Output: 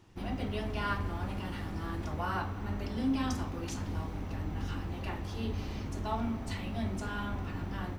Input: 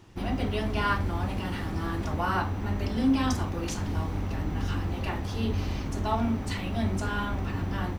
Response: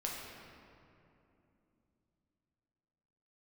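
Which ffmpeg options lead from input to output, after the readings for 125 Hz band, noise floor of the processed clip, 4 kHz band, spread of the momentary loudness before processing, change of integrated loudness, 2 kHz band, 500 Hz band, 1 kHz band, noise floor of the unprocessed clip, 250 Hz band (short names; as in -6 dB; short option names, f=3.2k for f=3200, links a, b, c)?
-6.5 dB, -40 dBFS, -6.5 dB, 5 LU, -6.5 dB, -6.5 dB, -6.5 dB, -6.5 dB, -34 dBFS, -6.5 dB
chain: -filter_complex "[0:a]asplit=2[a][b];[1:a]atrim=start_sample=2205[c];[b][c]afir=irnorm=-1:irlink=0,volume=-10dB[d];[a][d]amix=inputs=2:normalize=0,volume=-8.5dB"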